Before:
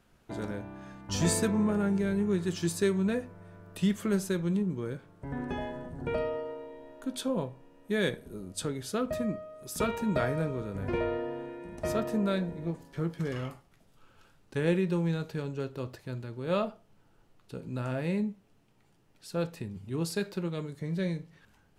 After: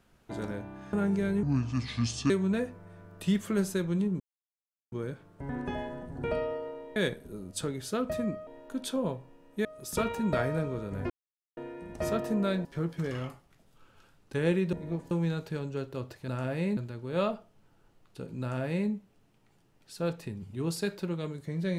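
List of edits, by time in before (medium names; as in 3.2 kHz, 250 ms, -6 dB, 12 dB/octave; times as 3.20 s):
0.93–1.75 s: delete
2.25–2.85 s: speed 69%
4.75 s: insert silence 0.72 s
6.79–7.97 s: move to 9.48 s
10.93–11.40 s: mute
12.48–12.86 s: move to 14.94 s
17.75–18.24 s: copy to 16.11 s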